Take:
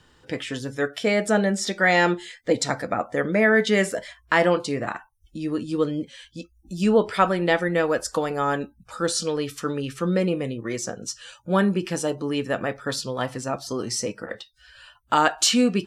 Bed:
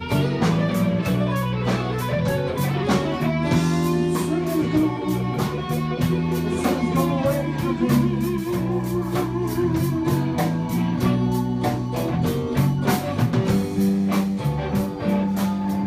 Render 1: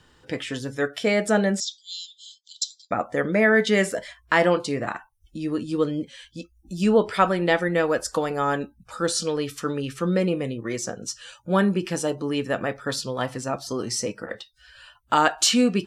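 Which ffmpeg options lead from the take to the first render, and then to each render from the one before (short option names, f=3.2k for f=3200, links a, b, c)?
-filter_complex "[0:a]asettb=1/sr,asplit=3[a][b][c];[a]atrim=end=1.604[d];[b]atrim=start=1.6:end=2.91,asetpts=PTS-STARTPTS,afade=t=in:d=0.004:c=qsin,afade=t=out:st=1.306:d=0.004:c=qsin,asuperpass=centerf=5000:order=20:qfactor=1.1[e];[c]atrim=start=2.906[f];[d][e]acrossfade=d=0.004:c1=hsin:c2=qsin[g];[g][f]acrossfade=d=0.004:c1=qsin:c2=hsin"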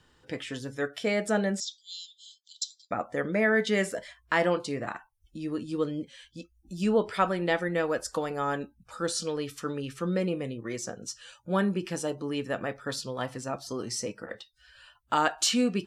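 -af "volume=-6dB"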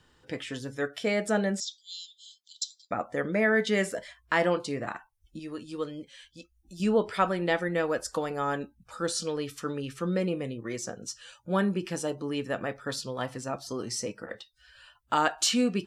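-filter_complex "[0:a]asettb=1/sr,asplit=3[a][b][c];[a]atrim=end=5.394[d];[b]atrim=start=5.39:end=6.8,asetpts=PTS-STARTPTS,afade=t=in:d=0.004:c=qsin,afade=t=out:st=1.406:d=0.004:c=qsin,equalizer=f=190:t=o:w=2.6:g=-8[e];[c]atrim=start=6.796[f];[d][e]acrossfade=d=0.004:c1=hsin:c2=qsin[g];[g][f]acrossfade=d=0.004:c1=qsin:c2=hsin"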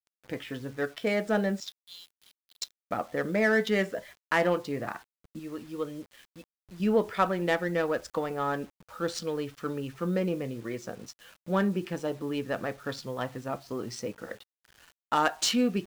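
-af "adynamicsmooth=sensitivity=4.5:basefreq=2.4k,acrusher=bits=8:mix=0:aa=0.000001"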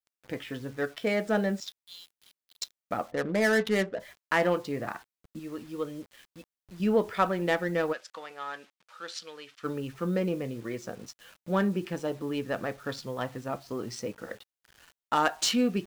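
-filter_complex "[0:a]asplit=3[a][b][c];[a]afade=t=out:st=3.1:d=0.02[d];[b]adynamicsmooth=sensitivity=6.5:basefreq=730,afade=t=in:st=3.1:d=0.02,afade=t=out:st=3.99:d=0.02[e];[c]afade=t=in:st=3.99:d=0.02[f];[d][e][f]amix=inputs=3:normalize=0,asplit=3[g][h][i];[g]afade=t=out:st=7.92:d=0.02[j];[h]bandpass=f=3.1k:t=q:w=0.76,afade=t=in:st=7.92:d=0.02,afade=t=out:st=9.63:d=0.02[k];[i]afade=t=in:st=9.63:d=0.02[l];[j][k][l]amix=inputs=3:normalize=0"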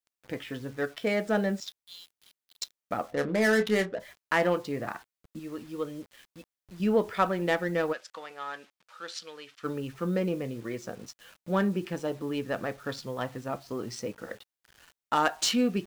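-filter_complex "[0:a]asettb=1/sr,asplit=3[a][b][c];[a]atrim=end=3.014[d];[b]atrim=start=3.01:end=3.93,asetpts=PTS-STARTPTS,afade=t=in:d=0.004:c=qsin,afade=t=out:st=0.916:d=0.004:c=qsin,asplit=2[e][f];[f]adelay=28,volume=-10dB[g];[e][g]amix=inputs=2:normalize=0,atrim=end_sample=40572[h];[c]atrim=start=3.926[i];[d][h]acrossfade=d=0.004:c1=hsin:c2=qsin[j];[j][i]acrossfade=d=0.004:c1=qsin:c2=hsin"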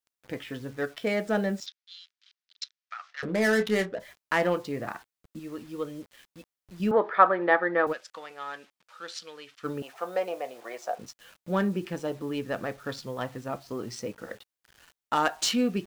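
-filter_complex "[0:a]asettb=1/sr,asplit=3[a][b][c];[a]atrim=end=1.664[d];[b]atrim=start=1.66:end=3.23,asetpts=PTS-STARTPTS,afade=t=in:d=0.004:c=qsin,afade=t=out:st=1.566:d=0.004:c=qsin,asuperpass=centerf=2800:order=8:qfactor=0.6[e];[c]atrim=start=3.226[f];[d][e]acrossfade=d=0.004:c1=hsin:c2=qsin[g];[g][f]acrossfade=d=0.004:c1=qsin:c2=hsin,asettb=1/sr,asplit=3[h][i][j];[h]atrim=end=6.914[k];[i]atrim=start=6.91:end=7.87,asetpts=PTS-STARTPTS,afade=t=in:d=0.004:c=qsin,afade=t=out:st=0.956:d=0.004:c=qsin,highpass=310,equalizer=f=340:t=q:w=4:g=4,equalizer=f=580:t=q:w=4:g=5,equalizer=f=830:t=q:w=4:g=7,equalizer=f=1.2k:t=q:w=4:g=10,equalizer=f=1.7k:t=q:w=4:g=8,equalizer=f=2.8k:t=q:w=4:g=-8,lowpass=f=3.4k:w=0.5412,lowpass=f=3.4k:w=1.3066[l];[j]atrim=start=7.866[m];[k][l]acrossfade=d=0.004:c1=hsin:c2=qsin[n];[n][m]acrossfade=d=0.004:c1=qsin:c2=hsin,asettb=1/sr,asplit=3[o][p][q];[o]atrim=end=9.824[r];[p]atrim=start=9.82:end=10.99,asetpts=PTS-STARTPTS,afade=t=in:d=0.004:c=qsin,afade=t=out:st=1.166:d=0.004:c=qsin,highpass=f=710:t=q:w=6.6[s];[q]atrim=start=10.986[t];[r][s]acrossfade=d=0.004:c1=hsin:c2=qsin[u];[u][t]acrossfade=d=0.004:c1=qsin:c2=hsin"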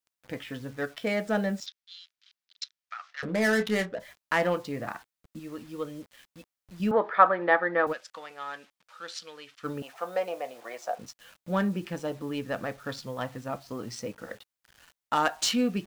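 -af "equalizer=f=380:t=o:w=0.3:g=-6.5"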